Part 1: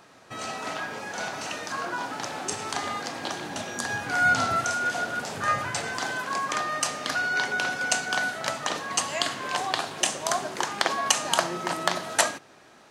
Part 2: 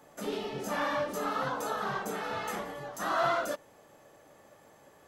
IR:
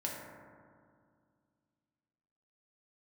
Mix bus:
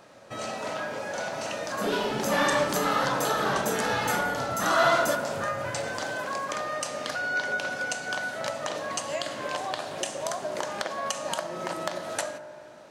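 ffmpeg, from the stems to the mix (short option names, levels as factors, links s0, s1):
-filter_complex "[0:a]equalizer=f=560:t=o:w=0.43:g=9.5,acompressor=threshold=0.0447:ratio=6,volume=0.668,asplit=2[s0][s1];[s1]volume=0.355[s2];[1:a]adynamicequalizer=threshold=0.00562:dfrequency=2100:dqfactor=0.7:tfrequency=2100:tqfactor=0.7:attack=5:release=100:ratio=0.375:range=3:mode=boostabove:tftype=highshelf,adelay=1600,volume=1.19,asplit=2[s3][s4];[s4]volume=0.562[s5];[2:a]atrim=start_sample=2205[s6];[s2][s5]amix=inputs=2:normalize=0[s7];[s7][s6]afir=irnorm=-1:irlink=0[s8];[s0][s3][s8]amix=inputs=3:normalize=0,lowshelf=f=200:g=3"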